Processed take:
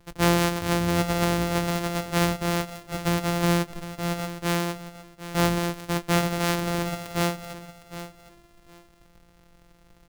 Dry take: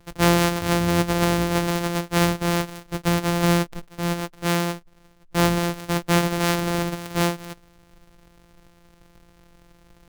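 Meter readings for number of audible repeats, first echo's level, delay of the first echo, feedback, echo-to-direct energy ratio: 2, -13.0 dB, 759 ms, 21%, -13.0 dB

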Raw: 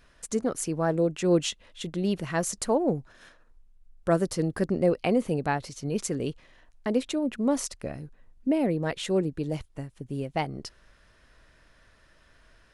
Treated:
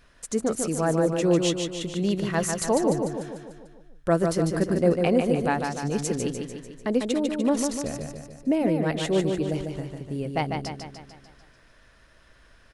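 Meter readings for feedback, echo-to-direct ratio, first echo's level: 55%, -3.5 dB, -5.0 dB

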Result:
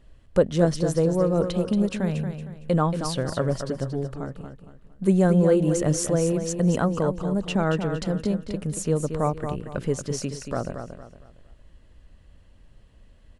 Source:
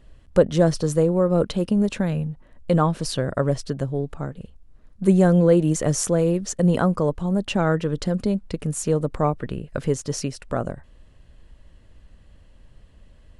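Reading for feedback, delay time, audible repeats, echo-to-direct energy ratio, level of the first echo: 34%, 230 ms, 3, -7.5 dB, -8.0 dB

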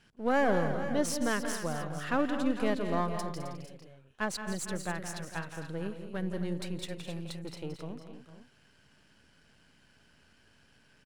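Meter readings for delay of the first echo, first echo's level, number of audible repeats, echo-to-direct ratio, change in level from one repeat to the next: 169 ms, -10.5 dB, 5, -5.5 dB, no regular repeats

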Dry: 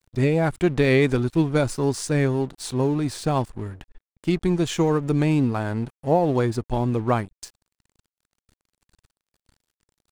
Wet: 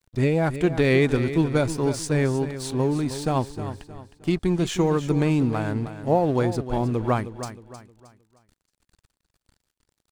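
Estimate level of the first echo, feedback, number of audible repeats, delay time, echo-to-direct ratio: -11.5 dB, 35%, 3, 312 ms, -11.0 dB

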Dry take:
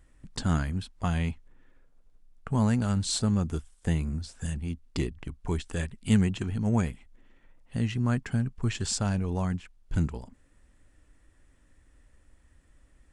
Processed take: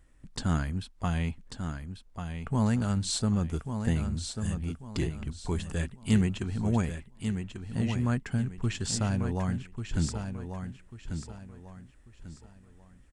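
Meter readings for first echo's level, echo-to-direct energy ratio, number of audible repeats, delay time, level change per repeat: -7.5 dB, -7.0 dB, 3, 1142 ms, -10.0 dB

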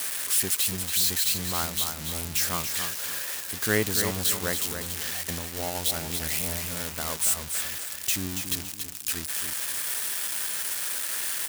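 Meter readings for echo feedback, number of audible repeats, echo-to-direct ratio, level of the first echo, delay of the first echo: 33%, 3, -7.0 dB, -7.5 dB, 282 ms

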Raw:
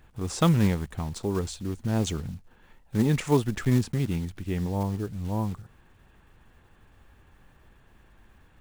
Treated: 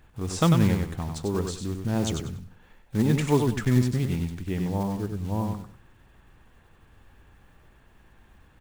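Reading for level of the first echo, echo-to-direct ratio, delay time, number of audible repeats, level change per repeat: -5.5 dB, -5.0 dB, 96 ms, 3, -12.5 dB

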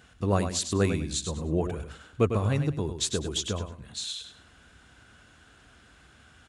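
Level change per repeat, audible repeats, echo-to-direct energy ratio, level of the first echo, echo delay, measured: -12.0 dB, 3, -7.5 dB, -8.0 dB, 101 ms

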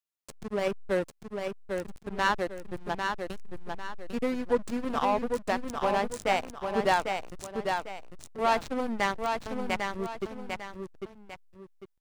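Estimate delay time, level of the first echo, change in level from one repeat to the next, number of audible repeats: 799 ms, -5.0 dB, -9.0 dB, 2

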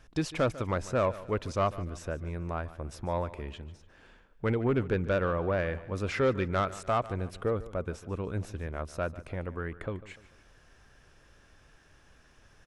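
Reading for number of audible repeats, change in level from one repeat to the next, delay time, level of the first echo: 3, -7.5 dB, 147 ms, -17.0 dB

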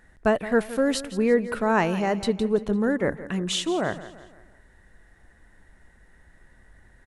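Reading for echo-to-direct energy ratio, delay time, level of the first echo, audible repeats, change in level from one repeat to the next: -14.0 dB, 170 ms, -15.0 dB, 3, -7.0 dB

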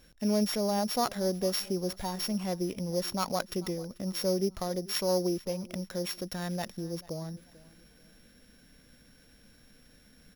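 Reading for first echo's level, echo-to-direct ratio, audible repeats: -21.0 dB, -20.5 dB, 2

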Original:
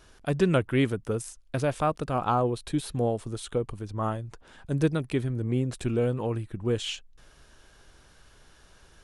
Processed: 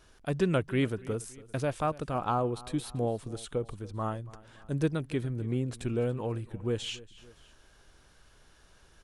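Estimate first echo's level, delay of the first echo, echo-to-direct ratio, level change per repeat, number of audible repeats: -20.0 dB, 284 ms, -19.0 dB, -6.0 dB, 2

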